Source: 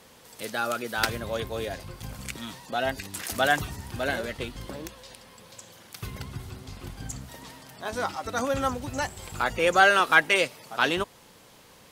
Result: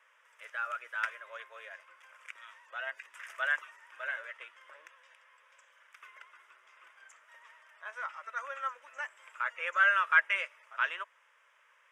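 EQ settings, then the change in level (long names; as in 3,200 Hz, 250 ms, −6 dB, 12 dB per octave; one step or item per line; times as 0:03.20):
elliptic high-pass filter 650 Hz, stop band 70 dB
head-to-tape spacing loss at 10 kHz 24 dB
phaser with its sweep stopped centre 1,800 Hz, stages 4
0.0 dB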